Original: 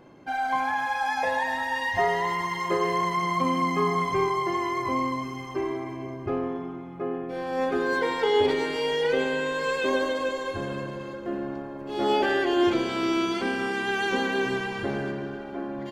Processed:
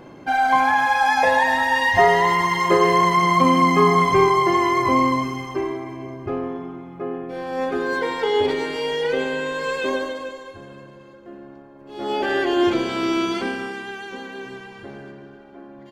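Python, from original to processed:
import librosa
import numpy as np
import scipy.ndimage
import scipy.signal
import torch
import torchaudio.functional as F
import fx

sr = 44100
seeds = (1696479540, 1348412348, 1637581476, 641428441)

y = fx.gain(x, sr, db=fx.line((5.17, 9.0), (5.8, 2.0), (9.88, 2.0), (10.59, -9.0), (11.74, -9.0), (12.38, 3.5), (13.38, 3.5), (14.06, -8.5)))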